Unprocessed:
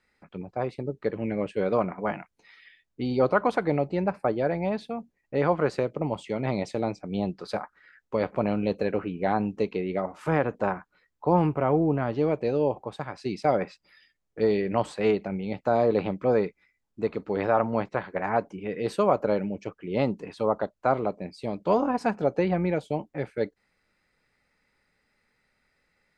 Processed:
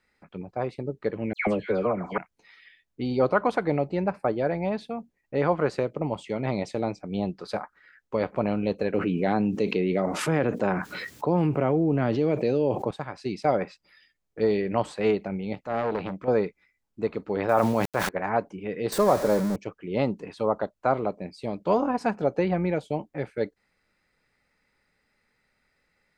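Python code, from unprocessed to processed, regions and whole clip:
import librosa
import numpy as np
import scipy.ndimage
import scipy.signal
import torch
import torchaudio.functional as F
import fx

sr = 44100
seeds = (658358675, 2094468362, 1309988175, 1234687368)

y = fx.chain(x, sr, fx.dispersion(late='lows', ms=137.0, hz=2100.0),
    fx.band_squash(depth_pct=100), at=(1.33, 2.18))
y = fx.chain(y, sr, fx.highpass(hz=120.0, slope=12),
    fx.peak_eq(hz=1000.0, db=-8.0, octaves=1.5),
    fx.env_flatten(amount_pct=70), at=(8.94, 12.91))
y = fx.chain(y, sr, fx.transient(attack_db=-10, sustain_db=-1),
    fx.transformer_sat(knee_hz=910.0), at=(15.55, 16.28))
y = fx.chain(y, sr, fx.sample_gate(floor_db=-42.0),
    fx.high_shelf(hz=4500.0, db=6.0),
    fx.sustainer(db_per_s=30.0), at=(17.49, 18.09))
y = fx.chain(y, sr, fx.zero_step(step_db=-25.5),
    fx.peak_eq(hz=2800.0, db=-11.0, octaves=0.72), at=(18.92, 19.56))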